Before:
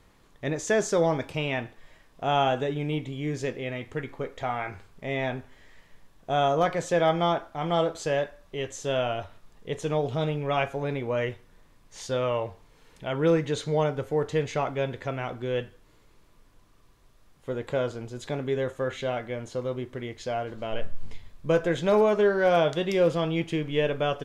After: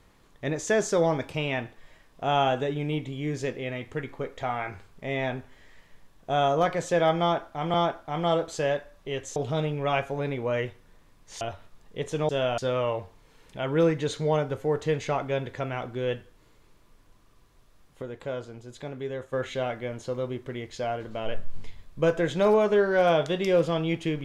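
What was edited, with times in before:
7.21–7.74 loop, 2 plays
8.83–9.12 swap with 10–12.05
17.49–18.8 gain -6 dB

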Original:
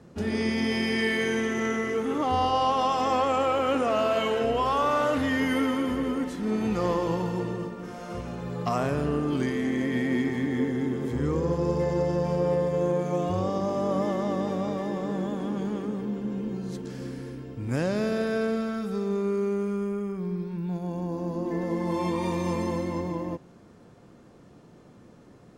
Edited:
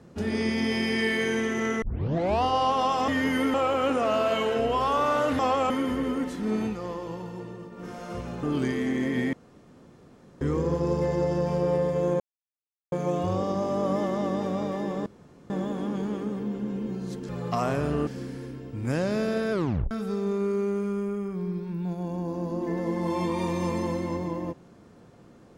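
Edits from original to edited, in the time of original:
1.82 tape start 0.61 s
3.08–3.39 swap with 5.24–5.7
6.61–7.86 dip -8.5 dB, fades 0.16 s
8.43–9.21 move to 16.91
10.11–11.19 room tone
12.98 insert silence 0.72 s
15.12 insert room tone 0.44 s
18.36 tape stop 0.39 s

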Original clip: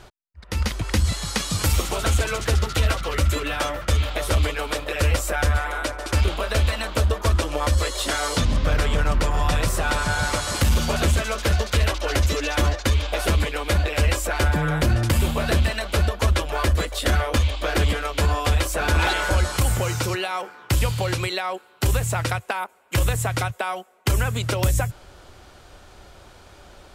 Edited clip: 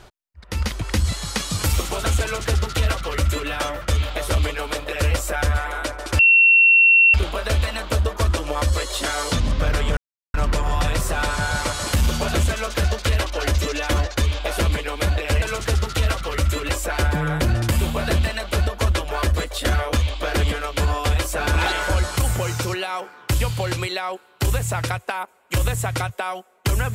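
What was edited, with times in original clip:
2.22–3.49 copy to 14.1
6.19 add tone 2720 Hz -9.5 dBFS 0.95 s
9.02 insert silence 0.37 s

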